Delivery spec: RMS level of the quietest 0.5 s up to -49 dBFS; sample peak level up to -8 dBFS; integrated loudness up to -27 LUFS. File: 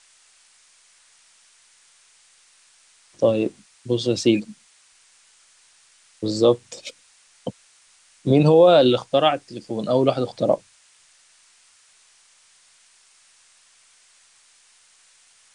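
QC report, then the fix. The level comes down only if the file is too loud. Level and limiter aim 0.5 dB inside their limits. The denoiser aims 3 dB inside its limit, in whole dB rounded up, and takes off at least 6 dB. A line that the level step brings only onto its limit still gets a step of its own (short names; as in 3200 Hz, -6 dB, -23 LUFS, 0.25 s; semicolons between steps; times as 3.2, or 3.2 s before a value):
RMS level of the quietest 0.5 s -57 dBFS: OK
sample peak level -5.0 dBFS: fail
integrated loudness -20.0 LUFS: fail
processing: gain -7.5 dB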